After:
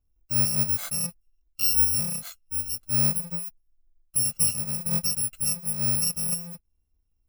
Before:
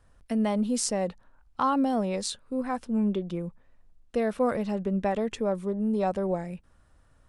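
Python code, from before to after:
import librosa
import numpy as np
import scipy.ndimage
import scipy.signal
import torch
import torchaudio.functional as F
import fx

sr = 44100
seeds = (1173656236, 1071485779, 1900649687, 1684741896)

y = fx.bit_reversed(x, sr, seeds[0], block=128)
y = fx.spectral_expand(y, sr, expansion=1.5)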